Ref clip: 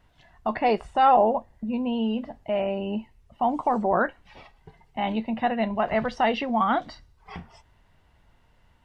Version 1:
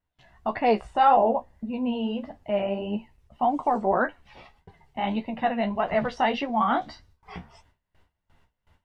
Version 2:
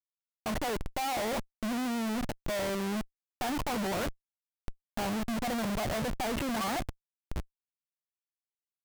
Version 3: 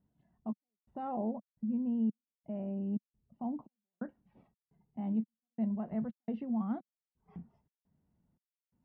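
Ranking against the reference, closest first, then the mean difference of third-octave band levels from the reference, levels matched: 1, 3, 2; 1.0, 9.5, 15.0 decibels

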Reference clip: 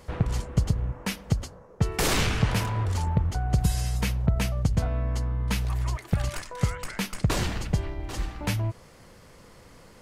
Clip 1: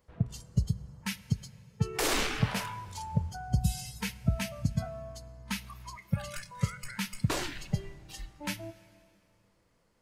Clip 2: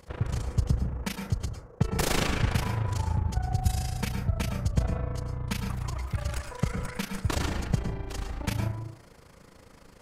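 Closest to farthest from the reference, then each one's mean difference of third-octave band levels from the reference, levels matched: 2, 1; 3.5, 6.5 decibels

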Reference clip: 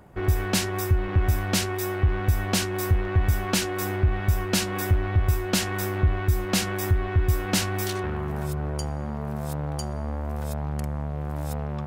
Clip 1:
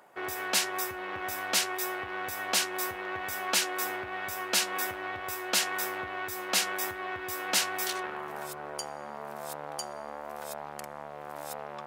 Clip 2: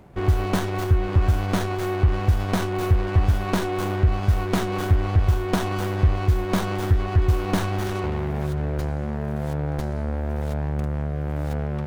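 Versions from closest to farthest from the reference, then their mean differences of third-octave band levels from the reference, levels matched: 2, 1; 3.0, 8.0 decibels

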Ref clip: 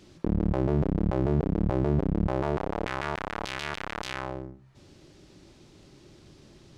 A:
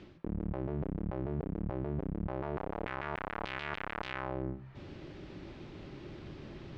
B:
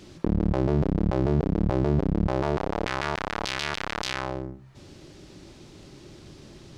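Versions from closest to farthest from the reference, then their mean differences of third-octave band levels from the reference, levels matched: B, A; 2.0, 6.5 decibels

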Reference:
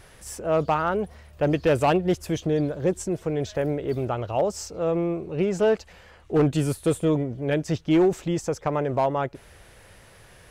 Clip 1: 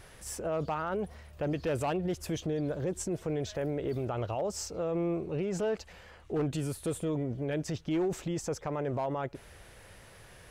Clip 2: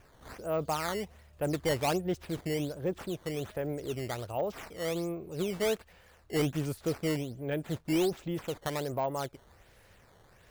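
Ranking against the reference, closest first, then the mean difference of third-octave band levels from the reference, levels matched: 1, 2; 3.5, 6.0 decibels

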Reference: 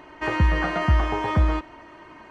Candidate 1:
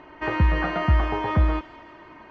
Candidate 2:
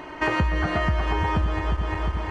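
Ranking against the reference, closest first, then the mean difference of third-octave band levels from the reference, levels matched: 1, 2; 1.5, 6.0 decibels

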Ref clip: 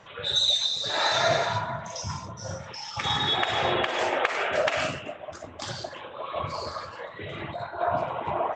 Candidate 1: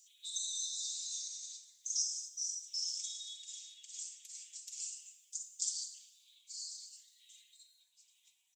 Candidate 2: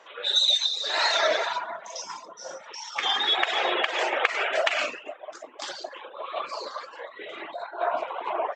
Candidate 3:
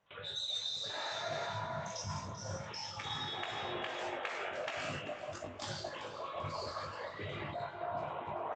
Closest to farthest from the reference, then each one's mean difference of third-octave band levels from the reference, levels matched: 3, 2, 1; 4.5, 6.5, 25.0 decibels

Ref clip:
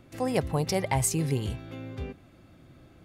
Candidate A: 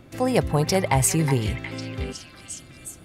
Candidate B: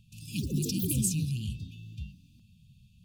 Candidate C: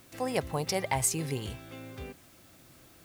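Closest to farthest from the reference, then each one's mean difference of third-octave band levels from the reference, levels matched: A, C, B; 3.0, 5.5, 11.5 decibels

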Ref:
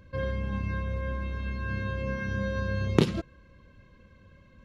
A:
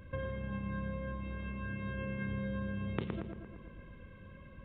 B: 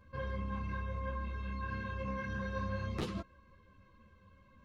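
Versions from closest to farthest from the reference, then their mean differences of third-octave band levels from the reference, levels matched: B, A; 2.5, 5.5 decibels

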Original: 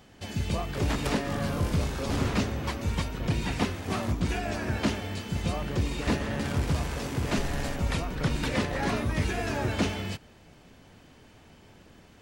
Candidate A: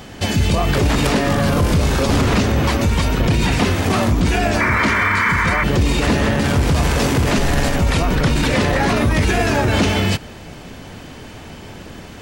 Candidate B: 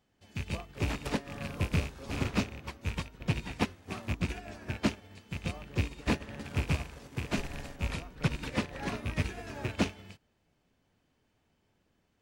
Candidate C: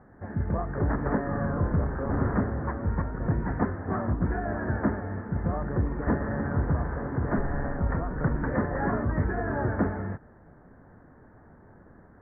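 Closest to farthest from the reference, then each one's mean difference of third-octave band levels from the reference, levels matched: A, B, C; 3.0, 7.0, 11.5 decibels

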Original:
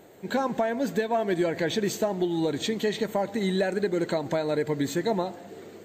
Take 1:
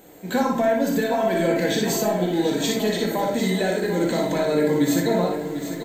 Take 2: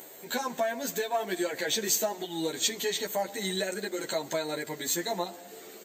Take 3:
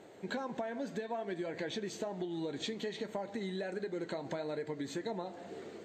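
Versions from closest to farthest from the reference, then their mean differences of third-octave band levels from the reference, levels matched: 3, 1, 2; 3.5, 6.0, 7.5 decibels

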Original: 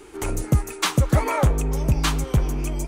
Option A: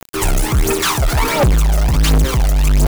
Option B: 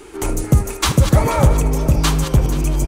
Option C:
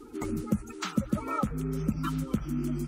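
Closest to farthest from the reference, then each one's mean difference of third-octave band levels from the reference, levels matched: B, C, A; 3.0, 6.0, 8.5 decibels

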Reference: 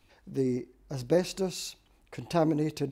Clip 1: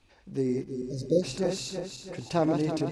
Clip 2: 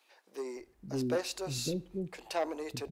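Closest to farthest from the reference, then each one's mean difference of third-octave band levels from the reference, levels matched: 1, 2; 5.5, 8.0 decibels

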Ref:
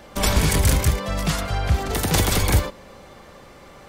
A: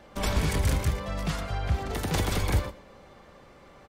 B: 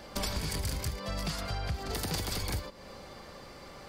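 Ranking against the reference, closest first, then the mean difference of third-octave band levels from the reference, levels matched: A, B; 2.0, 5.0 decibels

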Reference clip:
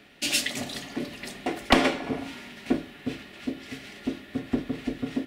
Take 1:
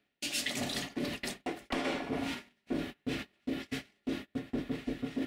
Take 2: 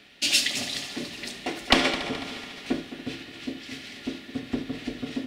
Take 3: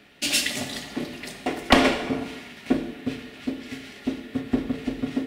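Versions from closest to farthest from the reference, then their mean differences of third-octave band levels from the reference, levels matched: 3, 2, 1; 2.0, 3.0, 6.5 decibels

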